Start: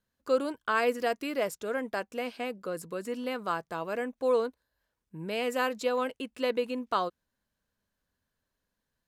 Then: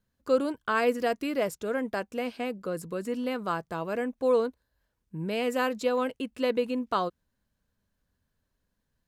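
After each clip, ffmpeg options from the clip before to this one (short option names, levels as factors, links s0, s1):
-af "lowshelf=f=270:g=9"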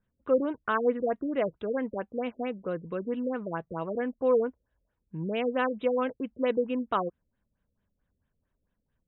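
-af "afftfilt=real='re*lt(b*sr/1024,570*pow(4000/570,0.5+0.5*sin(2*PI*4.5*pts/sr)))':imag='im*lt(b*sr/1024,570*pow(4000/570,0.5+0.5*sin(2*PI*4.5*pts/sr)))':win_size=1024:overlap=0.75"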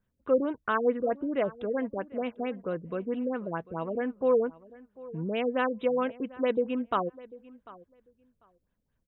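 -filter_complex "[0:a]asplit=2[s0][s1];[s1]adelay=745,lowpass=f=3500:p=1,volume=0.1,asplit=2[s2][s3];[s3]adelay=745,lowpass=f=3500:p=1,volume=0.16[s4];[s0][s2][s4]amix=inputs=3:normalize=0"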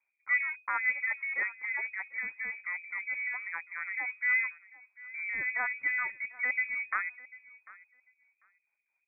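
-af "aeval=exprs='if(lt(val(0),0),0.708*val(0),val(0))':c=same,lowpass=f=2100:t=q:w=0.5098,lowpass=f=2100:t=q:w=0.6013,lowpass=f=2100:t=q:w=0.9,lowpass=f=2100:t=q:w=2.563,afreqshift=-2500,volume=0.708"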